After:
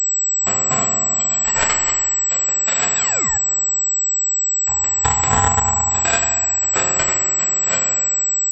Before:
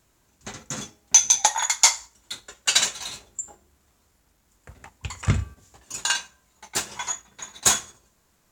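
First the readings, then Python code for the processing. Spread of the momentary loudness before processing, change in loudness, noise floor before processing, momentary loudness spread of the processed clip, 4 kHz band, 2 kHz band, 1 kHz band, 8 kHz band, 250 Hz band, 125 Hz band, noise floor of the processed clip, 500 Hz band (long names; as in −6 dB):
21 LU, +6.0 dB, −66 dBFS, 1 LU, −3.5 dB, +6.5 dB, +9.0 dB, +9.0 dB, +7.0 dB, +4.5 dB, −19 dBFS, +13.0 dB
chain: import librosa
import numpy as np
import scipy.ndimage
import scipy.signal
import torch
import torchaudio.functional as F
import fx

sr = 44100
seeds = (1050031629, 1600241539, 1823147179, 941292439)

y = fx.freq_compress(x, sr, knee_hz=3000.0, ratio=1.5)
y = fx.dereverb_blind(y, sr, rt60_s=1.2)
y = fx.over_compress(y, sr, threshold_db=-26.0, ratio=-1.0)
y = fx.dmg_crackle(y, sr, seeds[0], per_s=20.0, level_db=-41.0)
y = fx.fixed_phaser(y, sr, hz=1700.0, stages=4)
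y = fx.rev_fdn(y, sr, rt60_s=1.9, lf_ratio=1.55, hf_ratio=0.4, size_ms=16.0, drr_db=-1.0)
y = fx.spec_paint(y, sr, seeds[1], shape='fall', start_s=2.95, length_s=0.43, low_hz=760.0, high_hz=2800.0, level_db=-35.0)
y = (np.kron(scipy.signal.resample_poly(y, 1, 6), np.eye(6)[0]) * 6)[:len(y)]
y = fx.pwm(y, sr, carrier_hz=7800.0)
y = y * 10.0 ** (4.0 / 20.0)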